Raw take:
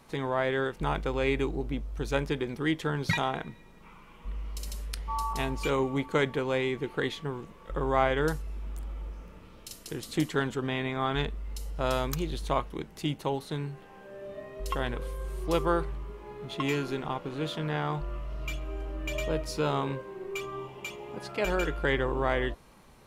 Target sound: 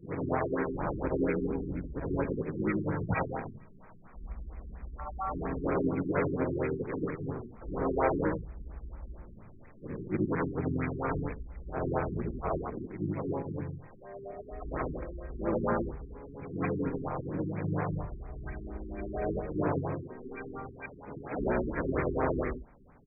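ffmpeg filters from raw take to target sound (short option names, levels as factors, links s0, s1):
-filter_complex "[0:a]afftfilt=real='re':imag='-im':win_size=8192:overlap=0.75,asplit=4[s0][s1][s2][s3];[s1]asetrate=29433,aresample=44100,atempo=1.49831,volume=0.891[s4];[s2]asetrate=35002,aresample=44100,atempo=1.25992,volume=0.158[s5];[s3]asetrate=52444,aresample=44100,atempo=0.840896,volume=0.708[s6];[s0][s4][s5][s6]amix=inputs=4:normalize=0,afftfilt=real='re*lt(b*sr/1024,390*pow(2600/390,0.5+0.5*sin(2*PI*4.3*pts/sr)))':imag='im*lt(b*sr/1024,390*pow(2600/390,0.5+0.5*sin(2*PI*4.3*pts/sr)))':win_size=1024:overlap=0.75"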